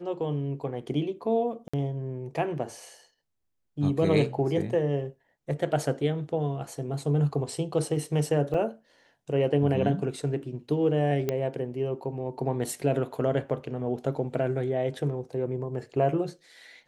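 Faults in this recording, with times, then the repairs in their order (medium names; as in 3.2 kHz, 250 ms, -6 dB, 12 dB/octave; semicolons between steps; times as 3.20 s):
1.68–1.74 s: dropout 55 ms
8.54 s: dropout 3.5 ms
11.29 s: pop -14 dBFS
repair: de-click; interpolate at 1.68 s, 55 ms; interpolate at 8.54 s, 3.5 ms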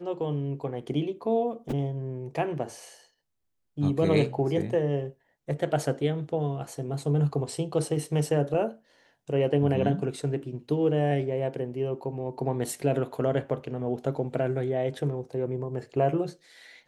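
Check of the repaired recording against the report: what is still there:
nothing left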